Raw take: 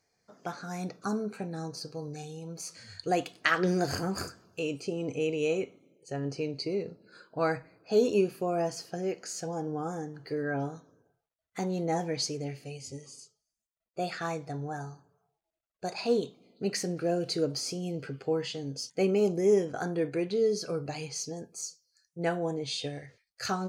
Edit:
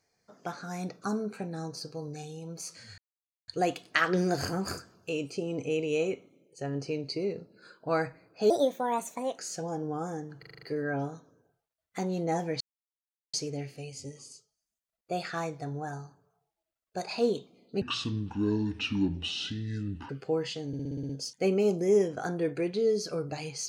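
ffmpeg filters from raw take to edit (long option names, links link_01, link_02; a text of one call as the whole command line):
ffmpeg -i in.wav -filter_complex "[0:a]asplit=20[link_01][link_02][link_03][link_04][link_05][link_06][link_07][link_08][link_09][link_10][link_11][link_12][link_13][link_14][link_15][link_16][link_17][link_18][link_19][link_20];[link_01]atrim=end=2.98,asetpts=PTS-STARTPTS,afade=type=out:start_time=2.976:duration=0.004:curve=hsin,apad=pad_dur=0.5[link_21];[link_02]atrim=start=2.98:end=8.004,asetpts=PTS-STARTPTS,afade=type=in:duration=0.004:curve=hsin[link_22];[link_03]atrim=start=8:end=9.23,asetpts=PTS-STARTPTS,asetrate=61299,aresample=44100[link_23];[link_04]atrim=start=9.226:end=10.272[link_24];[link_05]atrim=start=10.228:end=10.272[link_25];[link_06]atrim=start=10.228:end=10.272[link_26];[link_07]atrim=start=10.228:end=10.272[link_27];[link_08]atrim=start=10.228:end=10.272[link_28];[link_09]atrim=start=10.228:end=10.272[link_29];[link_10]atrim=start=10.228:end=12.21,asetpts=PTS-STARTPTS,afade=type=out:start_time=1.978:duration=0.004:curve=hsin,apad=pad_dur=0.73[link_30];[link_11]atrim=start=12.21:end=16.694,asetpts=PTS-STARTPTS,afade=type=in:duration=0.004:curve=hsin[link_31];[link_12]atrim=start=16.69:end=18.08,asetpts=PTS-STARTPTS,asetrate=26901,aresample=44100,atrim=end_sample=100490,asetpts=PTS-STARTPTS[link_32];[link_13]atrim=start=18.076:end=18.722[link_33];[link_14]atrim=start=18.658:end=18.722[link_34];[link_15]atrim=start=18.658:end=18.722[link_35];[link_16]atrim=start=18.658:end=18.722[link_36];[link_17]atrim=start=18.658:end=18.722[link_37];[link_18]atrim=start=18.658:end=18.722[link_38];[link_19]atrim=start=18.658:end=18.722[link_39];[link_20]atrim=start=18.658[link_40];[link_21][link_22]concat=n=2:v=0:a=1[link_41];[link_41][link_23]acrossfade=duration=0.004:curve1=hsin:curve2=hsin[link_42];[link_42][link_24]acrossfade=duration=0.004:curve1=hsin:curve2=hsin[link_43];[link_43][link_25]acrossfade=duration=0.004:curve1=hsin:curve2=hsin[link_44];[link_44][link_26]acrossfade=duration=0.004:curve1=hsin:curve2=hsin[link_45];[link_45][link_27]acrossfade=duration=0.004:curve1=hsin:curve2=hsin[link_46];[link_46][link_28]acrossfade=duration=0.004:curve1=hsin:curve2=hsin[link_47];[link_47][link_29]acrossfade=duration=0.004:curve1=hsin:curve2=hsin[link_48];[link_30][link_31]concat=n=2:v=0:a=1[link_49];[link_48][link_49]acrossfade=duration=0.004:curve1=hsin:curve2=hsin[link_50];[link_50][link_32]acrossfade=duration=0.004:curve1=hsin:curve2=hsin[link_51];[link_51][link_33]acrossfade=duration=0.004:curve1=hsin:curve2=hsin[link_52];[link_52][link_34]acrossfade=duration=0.004:curve1=hsin:curve2=hsin[link_53];[link_53][link_35]acrossfade=duration=0.004:curve1=hsin:curve2=hsin[link_54];[link_54][link_36]acrossfade=duration=0.004:curve1=hsin:curve2=hsin[link_55];[link_55][link_37]acrossfade=duration=0.004:curve1=hsin:curve2=hsin[link_56];[link_56][link_38]acrossfade=duration=0.004:curve1=hsin:curve2=hsin[link_57];[link_57][link_39]acrossfade=duration=0.004:curve1=hsin:curve2=hsin[link_58];[link_58][link_40]acrossfade=duration=0.004:curve1=hsin:curve2=hsin" out.wav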